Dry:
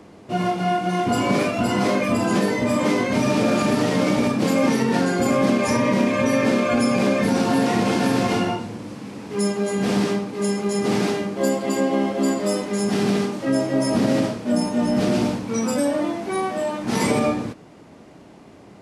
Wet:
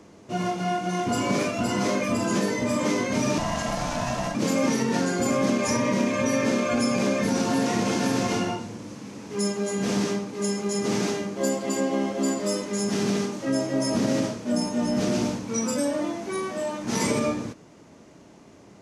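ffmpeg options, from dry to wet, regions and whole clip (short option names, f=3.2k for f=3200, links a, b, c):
-filter_complex "[0:a]asettb=1/sr,asplit=3[a][b][c];[a]atrim=end=3.384[d];[b]atrim=start=3.38:end=4.35,asetpts=PTS-STARTPTS,afade=t=in:d=0.004:c=qsin,afade=t=out:st=0.966:d=0.004:c=qsin,aeval=exprs='val(0)*sin(2*PI*430*n/s)':c=same,equalizer=f=160:t=o:w=0.33:g=-5.5[e];[c]atrim=start=4.346[f];[d][e]acrossfade=d=0.004:c1=hsin:c2=qsin[g];[g][f]acrossfade=d=0.004:c1=qsin:c2=hsin,equalizer=f=6.3k:w=2.5:g=9,bandreject=f=760:w=16,volume=-4.5dB"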